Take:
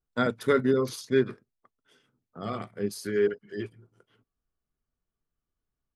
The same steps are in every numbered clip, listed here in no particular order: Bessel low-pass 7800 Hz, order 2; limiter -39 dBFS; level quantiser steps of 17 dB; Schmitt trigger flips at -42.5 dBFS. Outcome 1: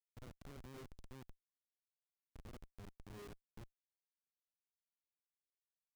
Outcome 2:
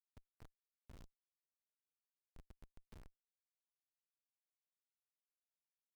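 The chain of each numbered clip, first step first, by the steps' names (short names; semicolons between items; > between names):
level quantiser > limiter > Bessel low-pass > Schmitt trigger; Bessel low-pass > limiter > level quantiser > Schmitt trigger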